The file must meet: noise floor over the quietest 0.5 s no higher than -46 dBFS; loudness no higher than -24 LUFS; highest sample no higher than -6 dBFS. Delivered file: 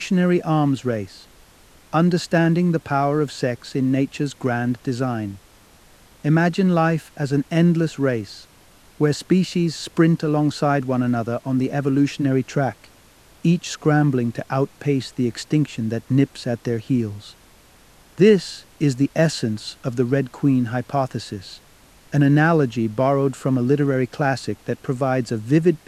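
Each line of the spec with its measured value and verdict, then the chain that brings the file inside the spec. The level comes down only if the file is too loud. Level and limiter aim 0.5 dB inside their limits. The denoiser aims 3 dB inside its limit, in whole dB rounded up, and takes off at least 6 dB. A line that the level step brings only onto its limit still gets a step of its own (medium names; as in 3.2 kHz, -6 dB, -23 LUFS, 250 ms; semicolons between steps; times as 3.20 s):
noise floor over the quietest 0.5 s -51 dBFS: pass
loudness -21.0 LUFS: fail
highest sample -4.0 dBFS: fail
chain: trim -3.5 dB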